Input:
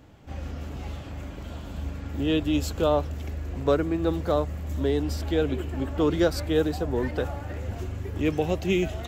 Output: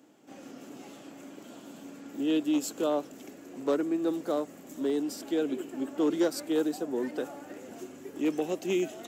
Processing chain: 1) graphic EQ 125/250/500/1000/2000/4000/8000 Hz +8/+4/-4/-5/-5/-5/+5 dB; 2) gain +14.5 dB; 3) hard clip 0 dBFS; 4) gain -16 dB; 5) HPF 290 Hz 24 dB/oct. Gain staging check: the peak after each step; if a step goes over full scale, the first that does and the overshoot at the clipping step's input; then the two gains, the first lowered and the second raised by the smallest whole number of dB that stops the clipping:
-9.5, +5.0, 0.0, -16.0, -16.0 dBFS; step 2, 5.0 dB; step 2 +9.5 dB, step 4 -11 dB

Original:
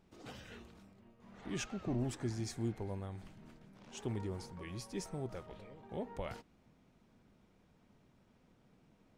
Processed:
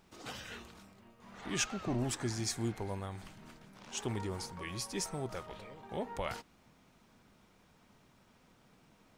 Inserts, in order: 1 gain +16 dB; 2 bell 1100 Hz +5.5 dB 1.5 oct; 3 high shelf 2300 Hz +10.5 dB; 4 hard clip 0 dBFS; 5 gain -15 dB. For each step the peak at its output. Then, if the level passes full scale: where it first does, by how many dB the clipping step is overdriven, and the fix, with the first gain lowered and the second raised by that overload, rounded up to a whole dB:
-9.5, -9.0, -4.5, -4.5, -19.5 dBFS; no overload

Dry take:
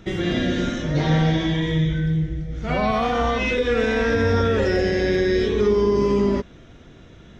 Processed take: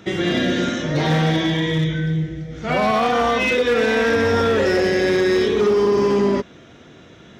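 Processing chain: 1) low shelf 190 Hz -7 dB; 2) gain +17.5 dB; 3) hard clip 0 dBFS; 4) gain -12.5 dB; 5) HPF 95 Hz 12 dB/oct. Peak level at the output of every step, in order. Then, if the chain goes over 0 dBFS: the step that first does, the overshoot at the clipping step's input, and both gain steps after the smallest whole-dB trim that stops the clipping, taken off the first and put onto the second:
-10.5, +7.0, 0.0, -12.5, -8.0 dBFS; step 2, 7.0 dB; step 2 +10.5 dB, step 4 -5.5 dB

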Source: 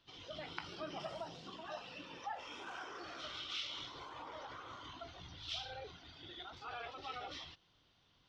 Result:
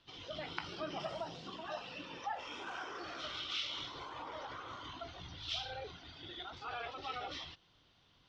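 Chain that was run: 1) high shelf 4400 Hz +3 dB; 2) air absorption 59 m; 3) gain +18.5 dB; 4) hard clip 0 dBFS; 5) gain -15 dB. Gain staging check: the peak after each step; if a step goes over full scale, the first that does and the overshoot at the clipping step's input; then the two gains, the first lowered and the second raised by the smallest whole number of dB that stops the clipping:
-21.5, -22.0, -3.5, -3.5, -18.5 dBFS; no overload

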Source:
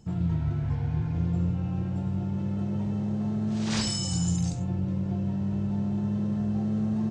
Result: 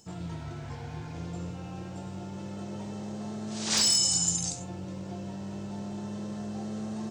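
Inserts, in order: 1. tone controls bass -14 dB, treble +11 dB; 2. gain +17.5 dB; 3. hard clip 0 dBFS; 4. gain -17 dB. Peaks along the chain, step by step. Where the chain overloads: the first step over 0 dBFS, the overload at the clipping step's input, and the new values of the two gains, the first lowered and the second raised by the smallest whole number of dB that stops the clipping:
-11.0, +6.5, 0.0, -17.0 dBFS; step 2, 6.5 dB; step 2 +10.5 dB, step 4 -10 dB

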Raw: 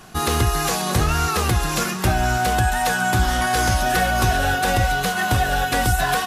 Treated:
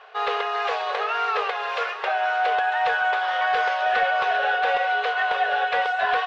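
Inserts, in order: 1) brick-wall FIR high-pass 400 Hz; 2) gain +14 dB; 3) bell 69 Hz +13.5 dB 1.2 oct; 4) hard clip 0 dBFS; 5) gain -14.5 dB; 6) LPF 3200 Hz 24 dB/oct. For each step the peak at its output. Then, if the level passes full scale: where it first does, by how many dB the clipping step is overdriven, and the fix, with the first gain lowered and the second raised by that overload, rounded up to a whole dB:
-8.5, +5.5, +5.5, 0.0, -14.5, -13.5 dBFS; step 2, 5.5 dB; step 2 +8 dB, step 5 -8.5 dB

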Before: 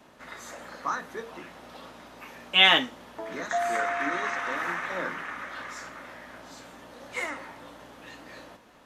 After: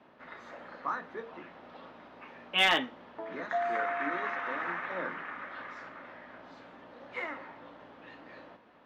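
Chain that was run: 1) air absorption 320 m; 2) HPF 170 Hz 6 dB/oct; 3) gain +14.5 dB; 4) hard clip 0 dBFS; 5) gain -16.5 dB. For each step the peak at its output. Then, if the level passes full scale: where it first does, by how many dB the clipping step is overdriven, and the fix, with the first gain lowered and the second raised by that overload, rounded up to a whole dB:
-9.0, -8.5, +6.0, 0.0, -16.5 dBFS; step 3, 6.0 dB; step 3 +8.5 dB, step 5 -10.5 dB

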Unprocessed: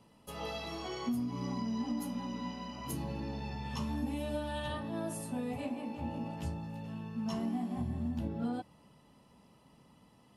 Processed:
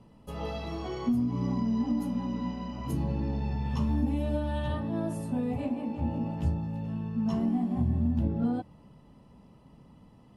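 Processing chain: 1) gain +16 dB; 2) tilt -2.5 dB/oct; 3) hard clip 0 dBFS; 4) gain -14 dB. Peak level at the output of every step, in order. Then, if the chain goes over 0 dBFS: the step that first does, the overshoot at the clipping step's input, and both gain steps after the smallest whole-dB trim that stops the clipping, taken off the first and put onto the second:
-7.0, -1.5, -1.5, -15.5 dBFS; no overload

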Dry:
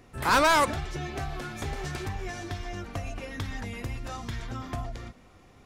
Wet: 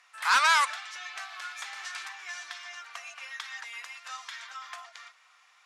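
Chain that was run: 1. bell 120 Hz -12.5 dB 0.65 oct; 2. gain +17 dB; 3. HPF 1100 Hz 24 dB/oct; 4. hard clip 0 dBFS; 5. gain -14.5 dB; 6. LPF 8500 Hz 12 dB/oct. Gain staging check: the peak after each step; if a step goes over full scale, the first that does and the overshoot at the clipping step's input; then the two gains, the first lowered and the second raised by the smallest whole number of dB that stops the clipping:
-15.0, +2.0, +4.0, 0.0, -14.5, -14.0 dBFS; step 2, 4.0 dB; step 2 +13 dB, step 5 -10.5 dB

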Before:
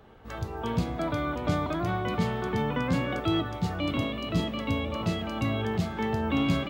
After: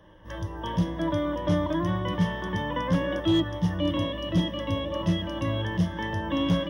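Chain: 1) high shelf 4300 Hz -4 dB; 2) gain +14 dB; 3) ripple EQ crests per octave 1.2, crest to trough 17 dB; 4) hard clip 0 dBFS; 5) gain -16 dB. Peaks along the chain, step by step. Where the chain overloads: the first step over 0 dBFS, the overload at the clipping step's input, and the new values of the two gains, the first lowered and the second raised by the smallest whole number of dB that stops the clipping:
-12.5, +1.5, +5.0, 0.0, -16.0 dBFS; step 2, 5.0 dB; step 2 +9 dB, step 5 -11 dB

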